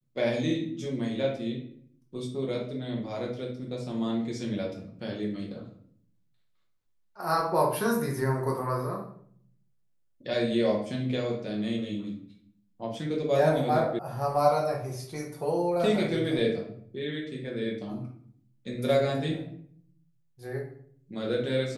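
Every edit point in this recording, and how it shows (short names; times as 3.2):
13.99 sound cut off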